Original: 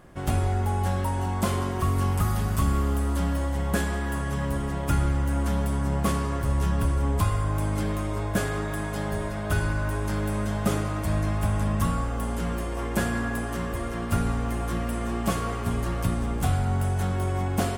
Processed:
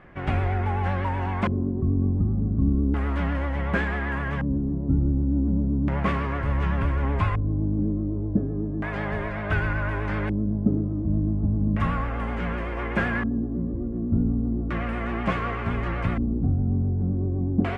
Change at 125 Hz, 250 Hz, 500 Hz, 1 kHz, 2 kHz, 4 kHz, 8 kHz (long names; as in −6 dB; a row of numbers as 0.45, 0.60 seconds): +1.0 dB, +4.0 dB, −1.0 dB, −1.0 dB, +3.0 dB, −5.5 dB, below −25 dB